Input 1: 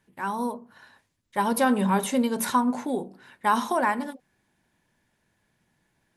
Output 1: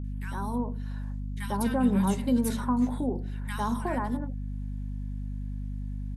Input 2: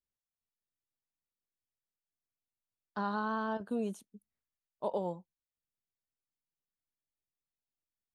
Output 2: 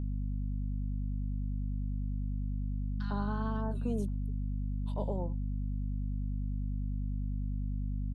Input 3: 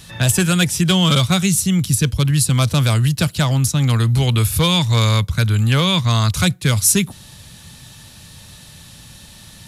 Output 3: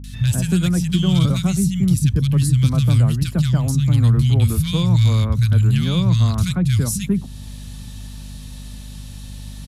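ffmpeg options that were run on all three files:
ffmpeg -i in.wav -filter_complex "[0:a]acrossover=split=150|1600[link_01][link_02][link_03];[link_03]adelay=40[link_04];[link_02]adelay=140[link_05];[link_01][link_05][link_04]amix=inputs=3:normalize=0,acrossover=split=270[link_06][link_07];[link_07]acompressor=threshold=-55dB:ratio=1.5[link_08];[link_06][link_08]amix=inputs=2:normalize=0,aeval=exprs='val(0)+0.0158*(sin(2*PI*50*n/s)+sin(2*PI*2*50*n/s)/2+sin(2*PI*3*50*n/s)/3+sin(2*PI*4*50*n/s)/4+sin(2*PI*5*50*n/s)/5)':channel_layout=same,volume=3.5dB" out.wav

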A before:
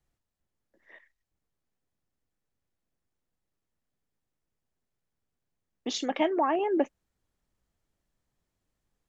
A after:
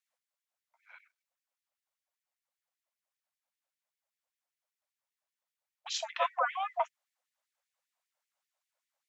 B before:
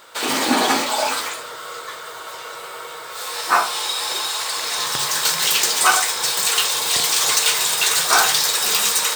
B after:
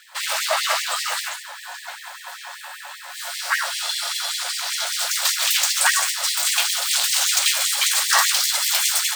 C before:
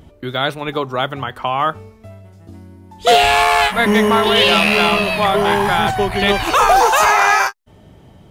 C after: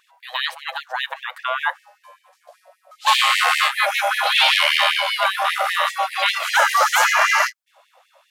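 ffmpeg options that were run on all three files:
ffmpeg -i in.wav -af "aeval=exprs='val(0)*sin(2*PI*380*n/s)':channel_layout=same,afftfilt=real='re*gte(b*sr/1024,500*pow(1800/500,0.5+0.5*sin(2*PI*5.1*pts/sr)))':imag='im*gte(b*sr/1024,500*pow(1800/500,0.5+0.5*sin(2*PI*5.1*pts/sr)))':win_size=1024:overlap=0.75,volume=1.5dB" out.wav

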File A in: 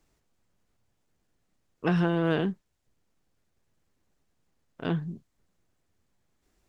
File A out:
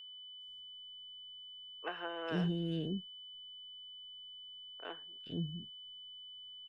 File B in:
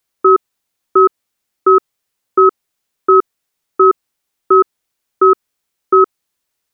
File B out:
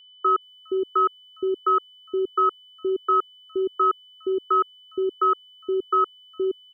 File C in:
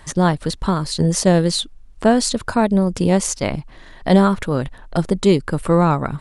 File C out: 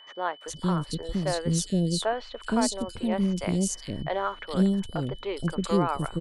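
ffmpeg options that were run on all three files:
ffmpeg -i in.wav -filter_complex "[0:a]acrossover=split=440|3100[link_01][link_02][link_03];[link_03]adelay=410[link_04];[link_01]adelay=470[link_05];[link_05][link_02][link_04]amix=inputs=3:normalize=0,aeval=exprs='val(0)+0.01*sin(2*PI*3000*n/s)':channel_layout=same,volume=-8.5dB" out.wav

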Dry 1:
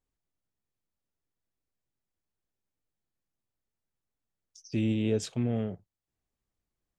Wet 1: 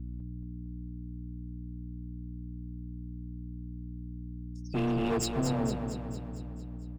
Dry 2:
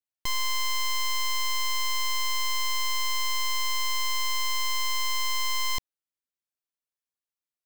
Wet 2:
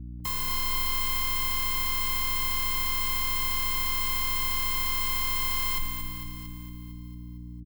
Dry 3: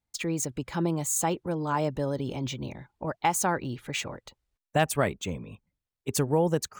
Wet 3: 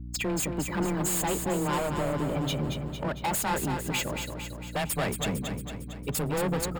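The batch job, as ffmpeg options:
ffmpeg -i in.wav -filter_complex "[0:a]afreqshift=17,afftdn=noise_reduction=19:noise_floor=-38,aemphasis=mode=production:type=50fm,alimiter=limit=-15dB:level=0:latency=1:release=91,asoftclip=type=tanh:threshold=-21.5dB,aeval=exprs='val(0)+0.00708*(sin(2*PI*60*n/s)+sin(2*PI*2*60*n/s)/2+sin(2*PI*3*60*n/s)/3+sin(2*PI*4*60*n/s)/4+sin(2*PI*5*60*n/s)/5)':channel_layout=same,volume=32dB,asoftclip=hard,volume=-32dB,bandreject=frequency=6000:width=5.3,asplit=2[link_01][link_02];[link_02]aecho=0:1:227|454|681|908|1135|1362|1589|1816:0.473|0.274|0.159|0.0923|0.0535|0.0311|0.018|0.0104[link_03];[link_01][link_03]amix=inputs=2:normalize=0,volume=5.5dB" out.wav

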